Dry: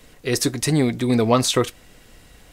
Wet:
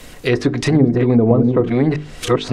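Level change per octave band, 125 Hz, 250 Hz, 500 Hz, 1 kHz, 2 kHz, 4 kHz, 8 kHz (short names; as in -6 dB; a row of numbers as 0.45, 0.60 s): +7.5 dB, +7.0 dB, +6.0 dB, -0.5 dB, +4.0 dB, -3.0 dB, n/a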